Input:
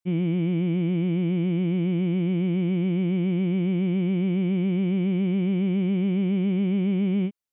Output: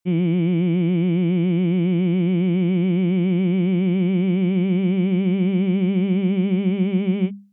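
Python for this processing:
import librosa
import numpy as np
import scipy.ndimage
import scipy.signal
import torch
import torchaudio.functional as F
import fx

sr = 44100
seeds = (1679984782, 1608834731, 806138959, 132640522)

y = fx.hum_notches(x, sr, base_hz=50, count=4)
y = F.gain(torch.from_numpy(y), 5.0).numpy()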